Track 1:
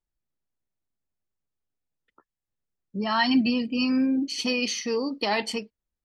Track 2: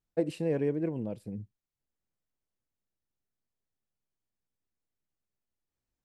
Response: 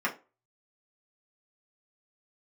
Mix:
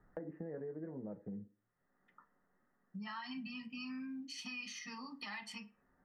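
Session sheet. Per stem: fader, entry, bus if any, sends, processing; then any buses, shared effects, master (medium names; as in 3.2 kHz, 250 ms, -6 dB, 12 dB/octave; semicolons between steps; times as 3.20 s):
-7.0 dB, 0.00 s, send -5 dB, FFT filter 160 Hz 0 dB, 480 Hz -24 dB, 970 Hz -2 dB; peak limiter -24 dBFS, peak gain reduction 9.5 dB
+0.5 dB, 0.00 s, send -12 dB, Chebyshev low-pass 1.9 kHz, order 6; peak limiter -22.5 dBFS, peak gain reduction 7 dB; three bands compressed up and down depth 70%; auto duck -13 dB, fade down 1.70 s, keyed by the first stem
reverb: on, RT60 0.30 s, pre-delay 3 ms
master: compression 3:1, threshold -47 dBFS, peak gain reduction 15 dB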